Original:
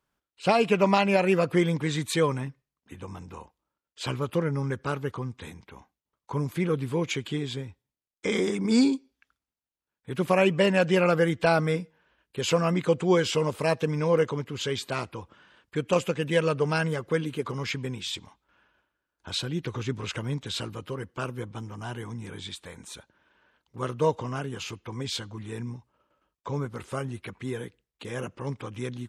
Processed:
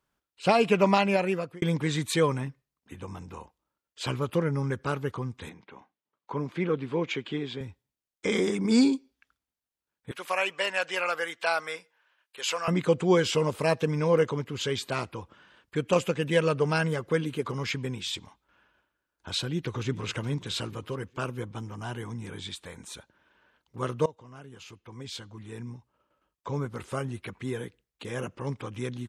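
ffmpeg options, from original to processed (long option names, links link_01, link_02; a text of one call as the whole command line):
ffmpeg -i in.wav -filter_complex "[0:a]asettb=1/sr,asplit=3[link_01][link_02][link_03];[link_01]atrim=end=5.494[link_04];[link_02]atrim=start=5.49:end=7.61,asetpts=PTS-STARTPTS,afade=type=in:duration=0.004:curve=qsin,afade=type=out:start_time=2.116:duration=0.004:curve=qsin,highpass=190,lowpass=3600[link_05];[link_03]atrim=start=7.606[link_06];[link_04][link_05]acrossfade=duration=0.004:curve1=hsin:curve2=qsin[link_07];[link_07][link_06]acrossfade=duration=0.004:curve1=qsin:curve2=hsin,asettb=1/sr,asplit=3[link_08][link_09][link_10];[link_08]atrim=end=10.114[link_11];[link_09]atrim=start=10.11:end=12.68,asetpts=PTS-STARTPTS,afade=type=in:duration=0.004:curve=qsin,afade=type=out:start_time=2.566:duration=0.004:curve=qsin,highpass=910[link_12];[link_10]atrim=start=12.676[link_13];[link_11][link_12]acrossfade=duration=0.004:curve1=hsin:curve2=qsin[link_14];[link_14][link_13]acrossfade=duration=0.004:curve1=qsin:curve2=hsin,asplit=2[link_15][link_16];[link_16]afade=type=in:start_time=19.39:duration=0.01,afade=type=out:start_time=20.14:duration=0.01,aecho=0:1:420|840|1260:0.141254|0.0565015|0.0226006[link_17];[link_15][link_17]amix=inputs=2:normalize=0,asplit=3[link_18][link_19][link_20];[link_18]atrim=end=1.62,asetpts=PTS-STARTPTS,afade=type=out:start_time=0.77:duration=0.85:curve=qsin[link_21];[link_19]atrim=start=1.62:end=24.06,asetpts=PTS-STARTPTS,afade=type=in:duration=0.004:curve=hsin,afade=type=out:start_time=22.436:duration=0.004:curve=hsin:silence=0.0841395[link_22];[link_20]atrim=start=24.06,asetpts=PTS-STARTPTS,afade=type=in:duration=2.72:silence=0.0841395[link_23];[link_21][link_22][link_23]concat=n=3:v=0:a=1" out.wav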